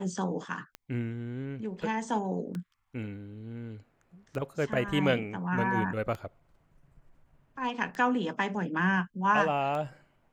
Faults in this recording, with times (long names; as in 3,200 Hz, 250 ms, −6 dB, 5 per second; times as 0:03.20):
scratch tick 33 1/3 rpm −24 dBFS